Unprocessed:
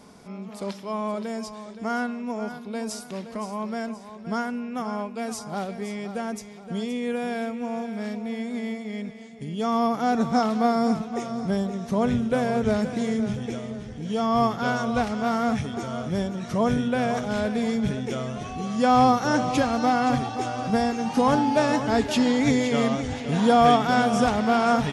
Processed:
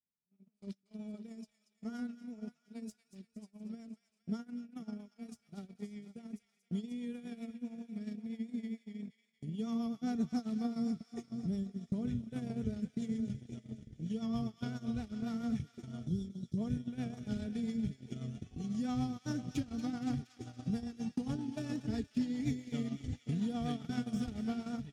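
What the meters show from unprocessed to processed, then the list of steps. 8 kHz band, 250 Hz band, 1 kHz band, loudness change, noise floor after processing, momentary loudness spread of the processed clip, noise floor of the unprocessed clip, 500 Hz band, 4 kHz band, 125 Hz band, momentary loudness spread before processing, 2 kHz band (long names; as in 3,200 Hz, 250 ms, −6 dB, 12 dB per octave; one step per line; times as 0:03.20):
below −15 dB, −11.5 dB, −28.0 dB, −14.5 dB, −79 dBFS, 13 LU, −41 dBFS, −23.5 dB, −19.0 dB, −9.5 dB, 13 LU, −24.0 dB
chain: stylus tracing distortion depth 0.025 ms
guitar amp tone stack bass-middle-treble 10-0-1
notch comb filter 530 Hz
downward compressor 8 to 1, threshold −47 dBFS, peak gain reduction 13 dB
time-frequency box erased 0:16.07–0:16.57, 550–3,100 Hz
noise gate −49 dBFS, range −40 dB
rotating-speaker cabinet horn 7.5 Hz
low-shelf EQ 77 Hz −7 dB
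delay with a high-pass on its return 234 ms, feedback 57%, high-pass 1,700 Hz, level −11.5 dB
automatic gain control gain up to 13 dB
level +5.5 dB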